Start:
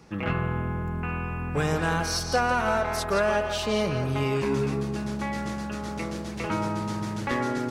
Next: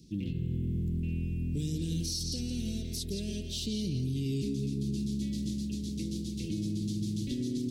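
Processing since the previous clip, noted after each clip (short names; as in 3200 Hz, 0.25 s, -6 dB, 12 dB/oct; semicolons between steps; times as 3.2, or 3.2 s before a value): Chebyshev band-stop 310–3600 Hz, order 3; limiter -25 dBFS, peak gain reduction 7.5 dB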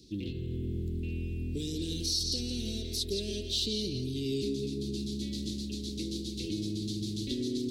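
fifteen-band EQ 160 Hz -10 dB, 400 Hz +7 dB, 4000 Hz +9 dB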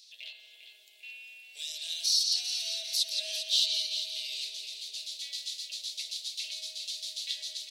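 rippled Chebyshev high-pass 620 Hz, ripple 3 dB; on a send: feedback echo 0.4 s, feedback 47%, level -9.5 dB; on the sum: gain +7 dB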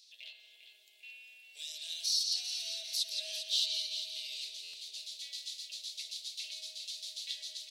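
on a send at -19 dB: reverb, pre-delay 3 ms; on the sum: stuck buffer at 4.63, samples 512, times 8; gain -5 dB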